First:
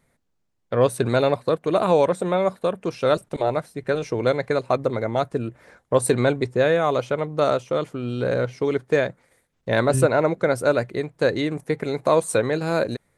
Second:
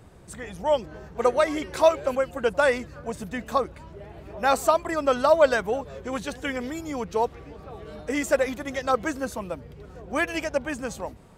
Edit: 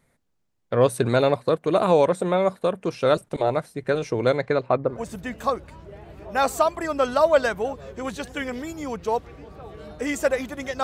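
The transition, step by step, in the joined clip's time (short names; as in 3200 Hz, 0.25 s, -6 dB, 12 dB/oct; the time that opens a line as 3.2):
first
4.41–4.99 LPF 6200 Hz -> 1200 Hz
4.92 switch to second from 3 s, crossfade 0.14 s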